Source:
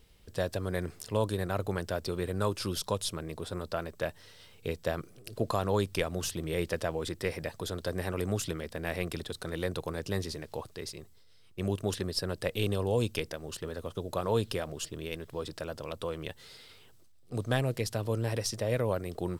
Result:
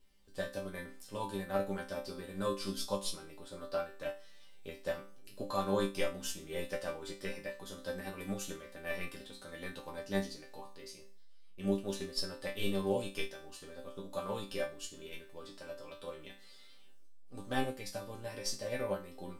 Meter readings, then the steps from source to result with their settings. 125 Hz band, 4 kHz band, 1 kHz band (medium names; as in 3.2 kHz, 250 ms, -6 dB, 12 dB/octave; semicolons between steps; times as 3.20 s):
-13.0 dB, -4.5 dB, -4.0 dB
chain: chord resonator G3 sus4, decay 0.4 s; upward expansion 1.5:1, over -57 dBFS; trim +16 dB